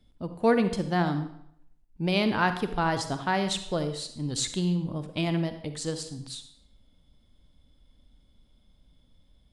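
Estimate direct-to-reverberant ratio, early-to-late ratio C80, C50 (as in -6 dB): 9.0 dB, 12.5 dB, 10.0 dB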